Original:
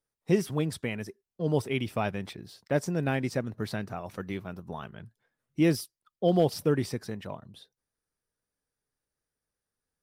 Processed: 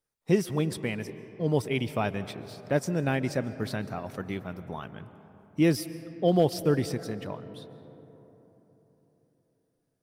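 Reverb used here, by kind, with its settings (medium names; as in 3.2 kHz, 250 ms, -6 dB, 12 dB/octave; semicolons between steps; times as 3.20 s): algorithmic reverb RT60 4 s, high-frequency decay 0.35×, pre-delay 100 ms, DRR 14 dB; trim +1 dB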